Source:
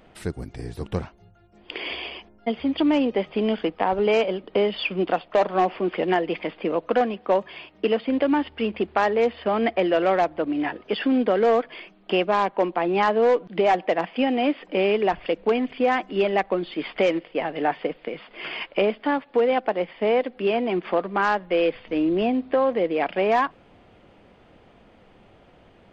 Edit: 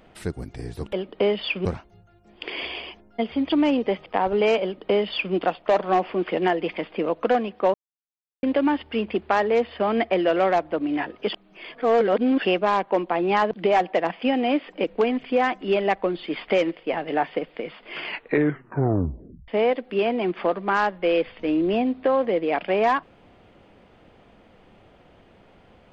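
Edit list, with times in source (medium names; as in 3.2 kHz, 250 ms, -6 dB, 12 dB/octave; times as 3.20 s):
3.34–3.72 s: delete
4.28–5.00 s: copy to 0.93 s
7.40–8.09 s: mute
10.99–12.11 s: reverse
13.17–13.45 s: delete
14.78–15.32 s: delete
18.51 s: tape stop 1.45 s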